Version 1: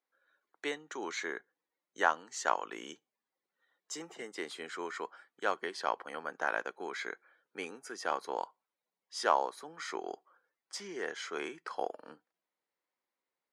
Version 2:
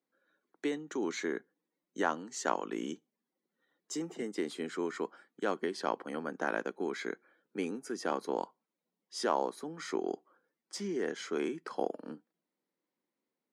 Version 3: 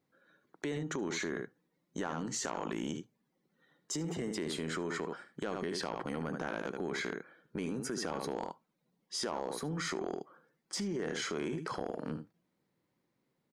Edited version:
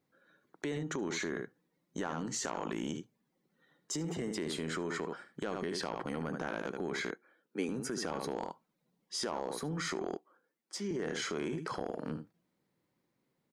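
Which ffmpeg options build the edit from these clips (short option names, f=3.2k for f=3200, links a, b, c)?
-filter_complex "[1:a]asplit=2[a][b];[2:a]asplit=3[c][d][e];[c]atrim=end=7.112[f];[a]atrim=start=7.108:end=7.692[g];[d]atrim=start=7.688:end=10.172[h];[b]atrim=start=10.168:end=10.912[i];[e]atrim=start=10.908[j];[f][g]acrossfade=d=0.004:c1=hsin:c2=hsin[k];[k][h]acrossfade=d=0.004:c1=hsin:c2=hsin[l];[l][i]acrossfade=d=0.004:c1=hsin:c2=hsin[m];[m][j]acrossfade=d=0.004:c1=hsin:c2=hsin"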